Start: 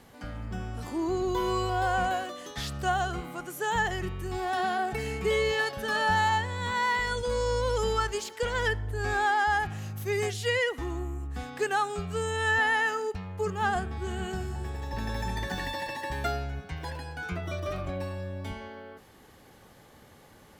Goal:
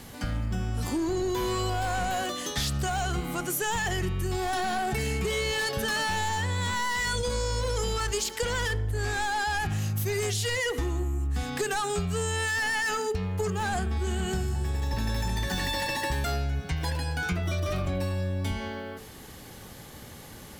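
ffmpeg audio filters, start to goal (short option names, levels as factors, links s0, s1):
-filter_complex "[0:a]asplit=2[s0][s1];[s1]alimiter=limit=0.075:level=0:latency=1,volume=0.794[s2];[s0][s2]amix=inputs=2:normalize=0,highshelf=f=2200:g=12,bandreject=f=48.77:t=h:w=4,bandreject=f=97.54:t=h:w=4,bandreject=f=146.31:t=h:w=4,bandreject=f=195.08:t=h:w=4,bandreject=f=243.85:t=h:w=4,bandreject=f=292.62:t=h:w=4,bandreject=f=341.39:t=h:w=4,bandreject=f=390.16:t=h:w=4,bandreject=f=438.93:t=h:w=4,bandreject=f=487.7:t=h:w=4,bandreject=f=536.47:t=h:w=4,bandreject=f=585.24:t=h:w=4,bandreject=f=634.01:t=h:w=4,bandreject=f=682.78:t=h:w=4,acrossover=split=5200[s3][s4];[s3]volume=12.6,asoftclip=hard,volume=0.0794[s5];[s5][s4]amix=inputs=2:normalize=0,lowshelf=f=400:g=10,acompressor=threshold=0.0708:ratio=6,volume=0.75"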